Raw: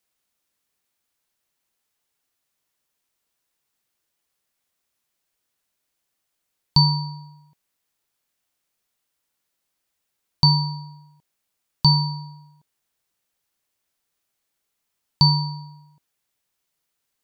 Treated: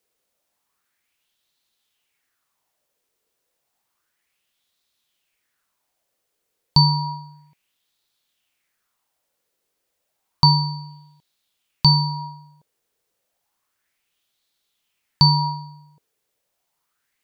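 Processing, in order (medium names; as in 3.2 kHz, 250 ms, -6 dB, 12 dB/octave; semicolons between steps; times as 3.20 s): sweeping bell 0.31 Hz 440–3900 Hz +12 dB; trim +1 dB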